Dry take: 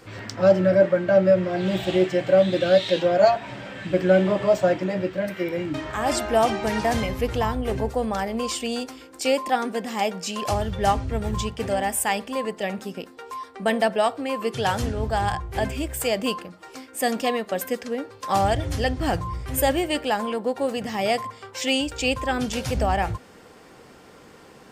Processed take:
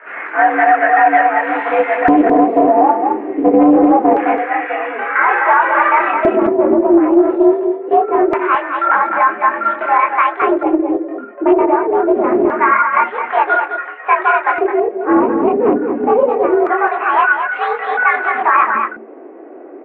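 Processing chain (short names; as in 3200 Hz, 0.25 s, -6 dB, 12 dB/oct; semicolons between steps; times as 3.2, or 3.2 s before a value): speed glide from 112% -> 137%; notches 50/100/150/200/250/300/350/400 Hz; in parallel at -12 dB: decimation with a swept rate 26×, swing 100% 2.7 Hz; on the sum: chorus voices 6, 0.93 Hz, delay 24 ms, depth 4.7 ms; mistuned SSB +76 Hz 180–2300 Hz; LFO band-pass square 0.24 Hz 330–1500 Hz; on a send: echo 0.214 s -7.5 dB; on the sum: maximiser +24 dB; Doppler distortion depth 0.21 ms; gain -1 dB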